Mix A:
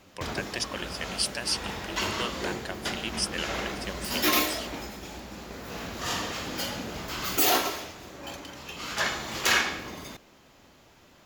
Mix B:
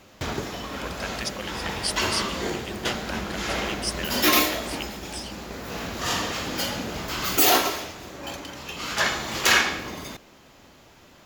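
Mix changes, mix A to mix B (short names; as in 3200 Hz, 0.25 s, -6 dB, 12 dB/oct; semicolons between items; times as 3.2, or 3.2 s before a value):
speech: entry +0.65 s; background +4.5 dB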